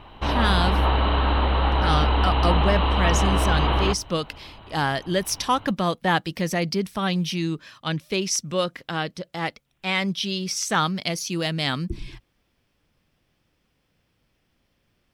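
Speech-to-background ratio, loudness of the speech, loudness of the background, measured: −4.0 dB, −26.0 LKFS, −22.0 LKFS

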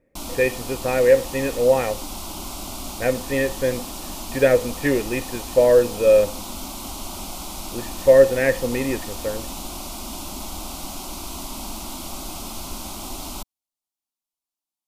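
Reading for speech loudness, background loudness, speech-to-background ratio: −20.0 LKFS, −32.5 LKFS, 12.5 dB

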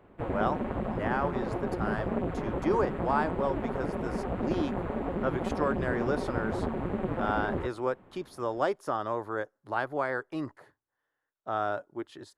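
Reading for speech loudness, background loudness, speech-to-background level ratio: −33.5 LKFS, −33.0 LKFS, −0.5 dB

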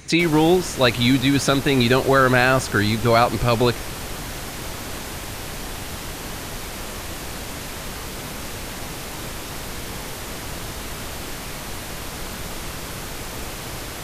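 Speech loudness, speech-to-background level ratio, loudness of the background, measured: −18.0 LKFS, 13.0 dB, −31.0 LKFS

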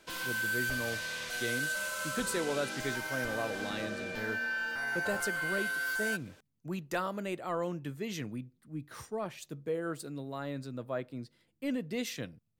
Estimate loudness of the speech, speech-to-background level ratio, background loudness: −38.5 LKFS, −4.0 dB, −34.5 LKFS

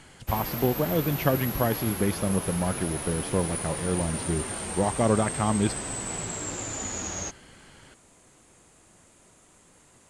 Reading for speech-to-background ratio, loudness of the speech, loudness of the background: 4.0 dB, −28.0 LKFS, −32.0 LKFS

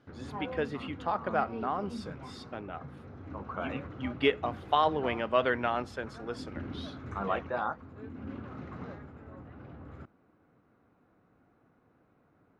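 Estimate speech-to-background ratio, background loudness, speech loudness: 12.0 dB, −44.5 LKFS, −32.5 LKFS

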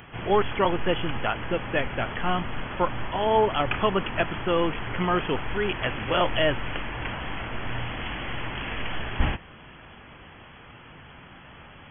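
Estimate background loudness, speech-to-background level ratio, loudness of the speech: −33.0 LKFS, 6.0 dB, −27.0 LKFS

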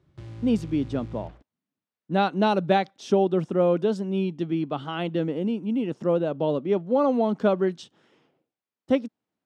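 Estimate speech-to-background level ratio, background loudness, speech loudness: 16.0 dB, −41.0 LKFS, −25.0 LKFS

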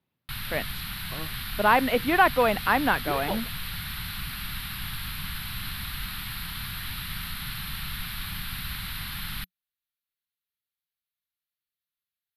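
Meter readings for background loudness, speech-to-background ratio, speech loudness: −34.0 LKFS, 10.0 dB, −24.0 LKFS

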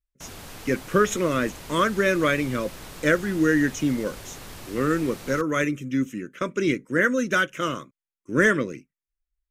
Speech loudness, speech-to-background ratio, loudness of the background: −24.0 LKFS, 17.0 dB, −41.0 LKFS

